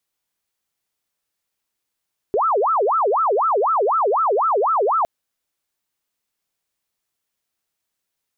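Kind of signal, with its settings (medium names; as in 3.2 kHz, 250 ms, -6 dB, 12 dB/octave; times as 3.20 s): siren wail 390–1340 Hz 4 per s sine -15 dBFS 2.71 s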